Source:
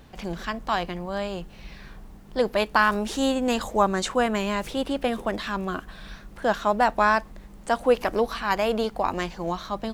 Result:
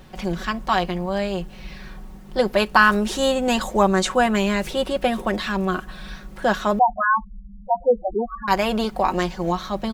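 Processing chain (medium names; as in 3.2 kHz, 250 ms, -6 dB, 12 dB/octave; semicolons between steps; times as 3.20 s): comb 5.4 ms, depth 57%; 6.79–8.48 s: loudest bins only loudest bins 4; trim +3.5 dB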